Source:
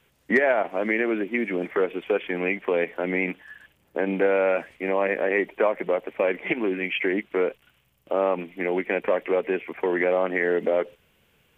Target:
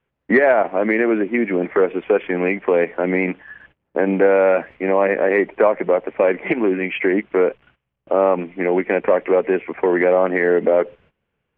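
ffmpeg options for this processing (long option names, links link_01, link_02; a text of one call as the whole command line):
ffmpeg -i in.wav -af "acontrast=55,agate=range=-17dB:threshold=-49dB:ratio=16:detection=peak,lowpass=1900,volume=1.5dB" out.wav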